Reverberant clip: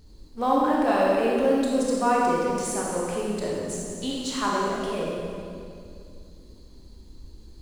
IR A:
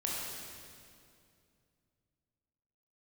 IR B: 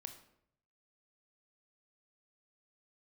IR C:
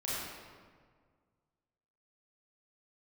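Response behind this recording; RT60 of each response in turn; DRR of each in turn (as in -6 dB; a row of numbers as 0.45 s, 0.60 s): A; 2.4 s, 0.70 s, 1.8 s; -4.5 dB, 6.5 dB, -9.0 dB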